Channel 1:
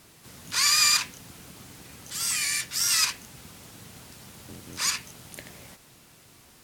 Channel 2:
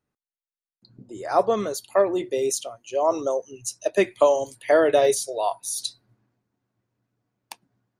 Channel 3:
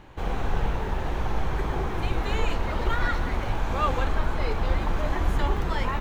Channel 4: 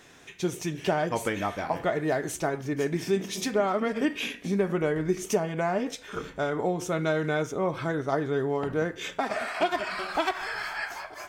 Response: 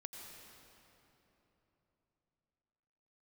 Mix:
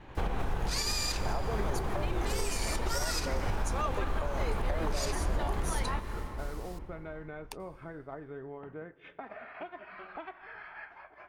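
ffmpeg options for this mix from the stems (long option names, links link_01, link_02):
-filter_complex "[0:a]equalizer=frequency=4500:width_type=o:width=0.77:gain=3,adelay=150,volume=-2dB,asplit=2[link_01][link_02];[link_02]volume=-13.5dB[link_03];[1:a]acompressor=threshold=-24dB:ratio=6,volume=-6.5dB,asplit=2[link_04][link_05];[link_05]volume=-12dB[link_06];[2:a]highshelf=frequency=7600:gain=-11,volume=1dB,asplit=2[link_07][link_08];[link_08]volume=-5dB[link_09];[3:a]lowpass=frequency=2600:width=0.5412,lowpass=frequency=2600:width=1.3066,acompressor=threshold=-40dB:ratio=3,aeval=exprs='val(0)+0.000316*(sin(2*PI*60*n/s)+sin(2*PI*2*60*n/s)/2+sin(2*PI*3*60*n/s)/3+sin(2*PI*4*60*n/s)/4+sin(2*PI*5*60*n/s)/5)':channel_layout=same,volume=-4.5dB,asplit=2[link_10][link_11];[link_11]volume=-14.5dB[link_12];[link_01][link_07][link_10]amix=inputs=3:normalize=0,agate=range=-33dB:threshold=-42dB:ratio=3:detection=peak,acompressor=threshold=-28dB:ratio=2,volume=0dB[link_13];[4:a]atrim=start_sample=2205[link_14];[link_03][link_06][link_09][link_12]amix=inputs=4:normalize=0[link_15];[link_15][link_14]afir=irnorm=-1:irlink=0[link_16];[link_04][link_13][link_16]amix=inputs=3:normalize=0,alimiter=limit=-21.5dB:level=0:latency=1:release=310"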